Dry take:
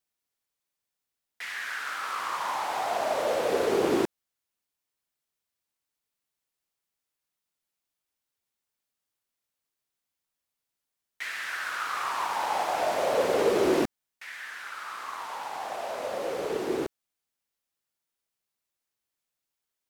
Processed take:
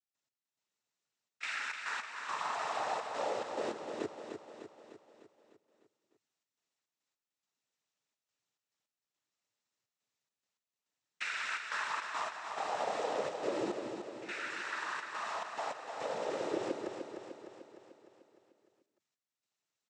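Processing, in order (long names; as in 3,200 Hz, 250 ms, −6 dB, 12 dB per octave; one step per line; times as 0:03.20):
downward compressor 6 to 1, threshold −33 dBFS, peak gain reduction 13 dB
cochlear-implant simulation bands 12
gate pattern ".x..xxxxx.xx" 105 BPM −12 dB
on a send: repeating echo 301 ms, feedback 56%, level −7 dB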